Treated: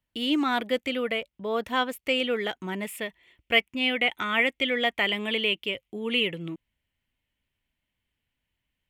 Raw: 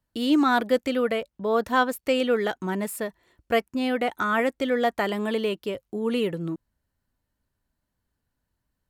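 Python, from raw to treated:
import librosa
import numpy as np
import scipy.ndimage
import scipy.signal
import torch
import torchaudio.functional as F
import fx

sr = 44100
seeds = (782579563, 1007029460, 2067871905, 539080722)

y = fx.band_shelf(x, sr, hz=2600.0, db=fx.steps((0.0, 9.5), (2.85, 16.0)), octaves=1.0)
y = F.gain(torch.from_numpy(y), -5.0).numpy()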